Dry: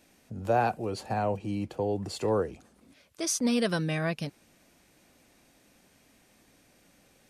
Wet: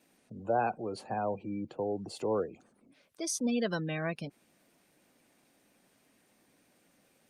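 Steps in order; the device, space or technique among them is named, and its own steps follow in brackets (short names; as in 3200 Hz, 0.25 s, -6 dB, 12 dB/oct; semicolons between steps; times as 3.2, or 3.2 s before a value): noise-suppressed video call (HPF 150 Hz 12 dB/oct; spectral gate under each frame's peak -25 dB strong; gain -3.5 dB; Opus 32 kbps 48000 Hz)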